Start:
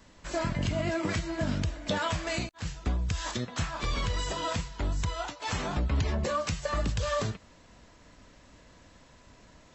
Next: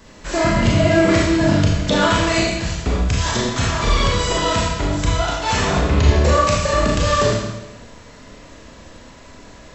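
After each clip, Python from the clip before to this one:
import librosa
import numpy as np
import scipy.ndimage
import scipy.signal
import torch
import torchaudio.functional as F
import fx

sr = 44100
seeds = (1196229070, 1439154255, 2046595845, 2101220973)

y = fx.peak_eq(x, sr, hz=430.0, db=4.0, octaves=0.46)
y = fx.rev_schroeder(y, sr, rt60_s=1.0, comb_ms=27, drr_db=-3.5)
y = F.gain(torch.from_numpy(y), 9.0).numpy()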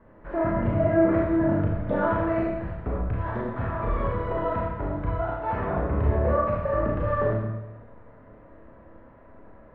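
y = scipy.signal.sosfilt(scipy.signal.butter(4, 1600.0, 'lowpass', fs=sr, output='sos'), x)
y = fx.peak_eq(y, sr, hz=560.0, db=3.5, octaves=0.77)
y = fx.comb_fb(y, sr, f0_hz=110.0, decay_s=0.97, harmonics='all', damping=0.0, mix_pct=70)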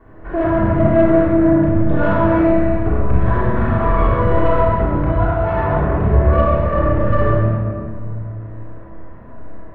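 y = fx.rider(x, sr, range_db=5, speed_s=2.0)
y = 10.0 ** (-16.5 / 20.0) * np.tanh(y / 10.0 ** (-16.5 / 20.0))
y = fx.room_shoebox(y, sr, seeds[0], volume_m3=2700.0, walls='mixed', distance_m=3.4)
y = F.gain(torch.from_numpy(y), 3.5).numpy()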